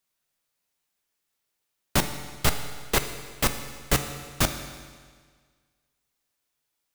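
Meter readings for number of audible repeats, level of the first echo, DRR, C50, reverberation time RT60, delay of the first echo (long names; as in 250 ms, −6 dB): no echo audible, no echo audible, 7.0 dB, 8.5 dB, 1.7 s, no echo audible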